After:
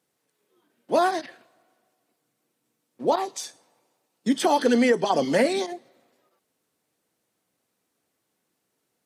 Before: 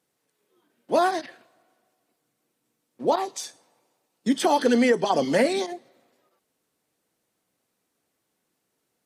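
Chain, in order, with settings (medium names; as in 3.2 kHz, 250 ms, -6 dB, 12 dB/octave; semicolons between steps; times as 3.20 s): high-pass 53 Hz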